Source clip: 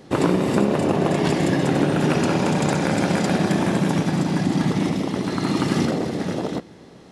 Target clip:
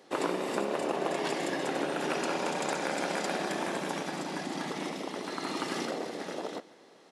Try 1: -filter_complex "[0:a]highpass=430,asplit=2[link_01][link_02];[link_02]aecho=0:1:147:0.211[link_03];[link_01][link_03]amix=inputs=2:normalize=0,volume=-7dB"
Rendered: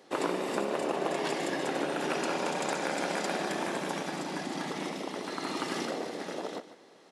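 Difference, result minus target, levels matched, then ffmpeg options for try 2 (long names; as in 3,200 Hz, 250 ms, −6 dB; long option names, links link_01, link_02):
echo-to-direct +7 dB
-filter_complex "[0:a]highpass=430,asplit=2[link_01][link_02];[link_02]aecho=0:1:147:0.0944[link_03];[link_01][link_03]amix=inputs=2:normalize=0,volume=-7dB"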